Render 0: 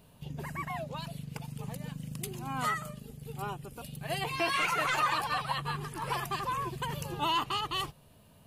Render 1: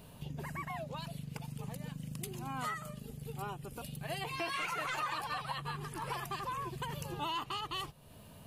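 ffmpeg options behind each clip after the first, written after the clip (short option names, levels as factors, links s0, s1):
-af "acompressor=threshold=0.00316:ratio=2,volume=1.78"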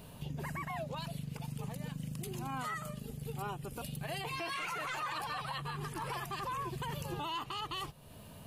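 -af "alimiter=level_in=2.82:limit=0.0631:level=0:latency=1:release=28,volume=0.355,volume=1.33"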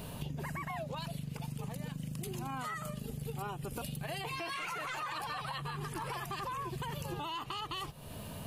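-af "acompressor=threshold=0.00631:ratio=6,volume=2.37"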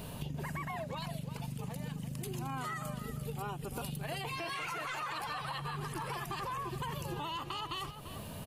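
-filter_complex "[0:a]asplit=2[s0][s1];[s1]adelay=344,volume=0.316,highshelf=f=4000:g=-7.74[s2];[s0][s2]amix=inputs=2:normalize=0"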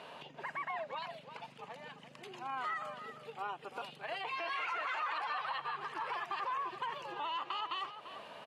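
-af "highpass=650,lowpass=2800,volume=1.41"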